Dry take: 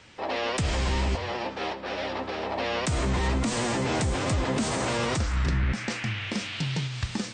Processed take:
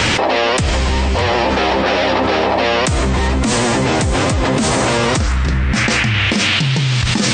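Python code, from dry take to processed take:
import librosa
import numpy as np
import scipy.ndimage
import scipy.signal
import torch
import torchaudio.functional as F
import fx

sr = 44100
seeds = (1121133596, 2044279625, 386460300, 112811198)

y = x + 10.0 ** (-22.0 / 20.0) * np.pad(x, (int(606 * sr / 1000.0), 0))[:len(x)]
y = fx.env_flatten(y, sr, amount_pct=100)
y = y * librosa.db_to_amplitude(8.0)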